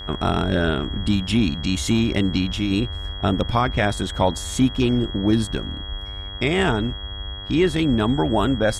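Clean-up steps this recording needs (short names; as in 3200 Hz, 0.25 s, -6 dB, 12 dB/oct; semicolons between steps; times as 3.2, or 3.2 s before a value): de-hum 99.2 Hz, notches 20; notch 3300 Hz, Q 30; noise print and reduce 30 dB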